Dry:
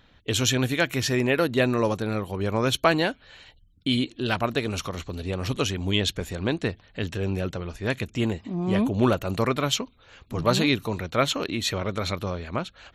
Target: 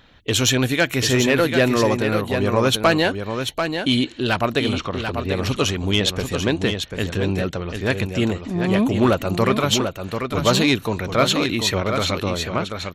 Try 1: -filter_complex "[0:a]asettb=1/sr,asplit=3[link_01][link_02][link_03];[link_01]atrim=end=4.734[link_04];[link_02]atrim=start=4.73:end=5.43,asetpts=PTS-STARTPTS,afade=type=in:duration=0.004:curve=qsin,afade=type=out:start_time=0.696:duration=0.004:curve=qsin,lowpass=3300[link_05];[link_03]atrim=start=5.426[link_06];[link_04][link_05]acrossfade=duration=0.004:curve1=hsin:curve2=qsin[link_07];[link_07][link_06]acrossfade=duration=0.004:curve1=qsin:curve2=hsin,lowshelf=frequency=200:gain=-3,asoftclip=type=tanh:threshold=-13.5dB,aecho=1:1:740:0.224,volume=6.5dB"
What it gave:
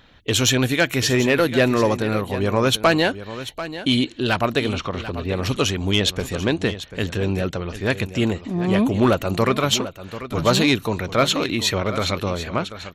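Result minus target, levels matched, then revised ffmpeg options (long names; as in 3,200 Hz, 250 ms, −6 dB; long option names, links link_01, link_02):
echo-to-direct −6.5 dB
-filter_complex "[0:a]asettb=1/sr,asplit=3[link_01][link_02][link_03];[link_01]atrim=end=4.734[link_04];[link_02]atrim=start=4.73:end=5.43,asetpts=PTS-STARTPTS,afade=type=in:duration=0.004:curve=qsin,afade=type=out:start_time=0.696:duration=0.004:curve=qsin,lowpass=3300[link_05];[link_03]atrim=start=5.426[link_06];[link_04][link_05]acrossfade=duration=0.004:curve1=hsin:curve2=qsin[link_07];[link_07][link_06]acrossfade=duration=0.004:curve1=qsin:curve2=hsin,lowshelf=frequency=200:gain=-3,asoftclip=type=tanh:threshold=-13.5dB,aecho=1:1:740:0.473,volume=6.5dB"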